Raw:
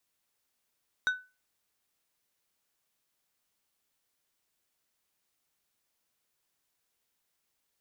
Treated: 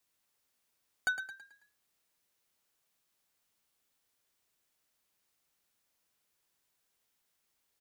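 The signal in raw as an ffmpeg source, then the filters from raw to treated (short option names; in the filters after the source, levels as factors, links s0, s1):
-f lavfi -i "aevalsrc='0.0891*pow(10,-3*t/0.29)*sin(2*PI*1500*t)+0.0266*pow(10,-3*t/0.153)*sin(2*PI*3750*t)+0.00794*pow(10,-3*t/0.11)*sin(2*PI*6000*t)+0.00237*pow(10,-3*t/0.094)*sin(2*PI*7500*t)+0.000708*pow(10,-3*t/0.078)*sin(2*PI*9750*t)':d=0.89:s=44100"
-filter_complex "[0:a]aeval=exprs='0.0668*(abs(mod(val(0)/0.0668+3,4)-2)-1)':c=same,asplit=6[s0][s1][s2][s3][s4][s5];[s1]adelay=109,afreqshift=36,volume=0.335[s6];[s2]adelay=218,afreqshift=72,volume=0.141[s7];[s3]adelay=327,afreqshift=108,volume=0.0589[s8];[s4]adelay=436,afreqshift=144,volume=0.0248[s9];[s5]adelay=545,afreqshift=180,volume=0.0105[s10];[s0][s6][s7][s8][s9][s10]amix=inputs=6:normalize=0"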